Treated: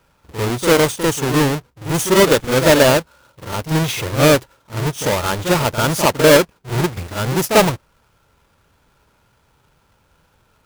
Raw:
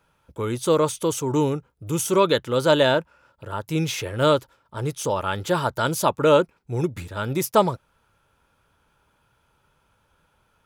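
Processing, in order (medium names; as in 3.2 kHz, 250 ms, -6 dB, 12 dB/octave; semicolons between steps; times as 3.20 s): square wave that keeps the level; reverse echo 45 ms -9 dB; trim +1.5 dB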